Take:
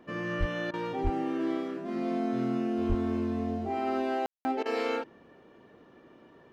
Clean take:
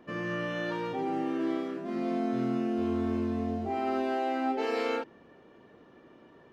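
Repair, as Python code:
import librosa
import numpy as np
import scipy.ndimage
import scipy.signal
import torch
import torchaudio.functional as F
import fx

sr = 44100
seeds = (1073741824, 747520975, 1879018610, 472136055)

y = fx.fix_declip(x, sr, threshold_db=-19.5)
y = fx.fix_deplosive(y, sr, at_s=(0.39, 1.03, 2.88))
y = fx.fix_ambience(y, sr, seeds[0], print_start_s=5.43, print_end_s=5.93, start_s=4.26, end_s=4.45)
y = fx.fix_interpolate(y, sr, at_s=(0.71, 4.63), length_ms=25.0)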